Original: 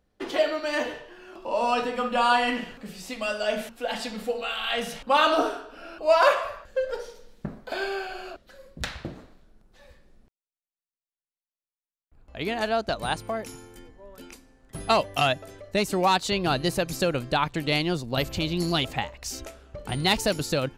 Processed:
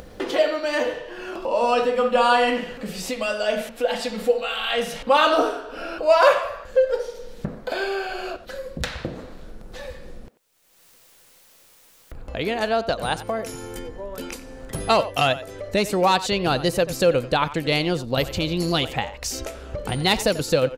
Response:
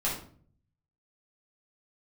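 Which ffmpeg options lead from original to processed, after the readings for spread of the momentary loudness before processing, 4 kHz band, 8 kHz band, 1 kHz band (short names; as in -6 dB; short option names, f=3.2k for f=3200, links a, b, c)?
18 LU, +3.0 dB, +4.0 dB, +3.0 dB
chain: -filter_complex "[0:a]equalizer=f=500:w=7:g=9,acompressor=mode=upward:threshold=-25dB:ratio=2.5,asplit=2[a][b];[b]adelay=90,highpass=300,lowpass=3.4k,asoftclip=type=hard:threshold=-12.5dB,volume=-14dB[c];[a][c]amix=inputs=2:normalize=0,volume=2.5dB"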